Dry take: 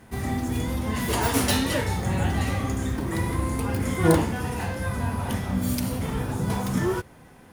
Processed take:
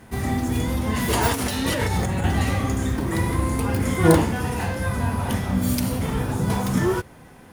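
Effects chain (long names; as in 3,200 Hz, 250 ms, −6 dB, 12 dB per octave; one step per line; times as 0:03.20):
0:01.31–0:02.25: compressor whose output falls as the input rises −27 dBFS, ratio −1
level +3.5 dB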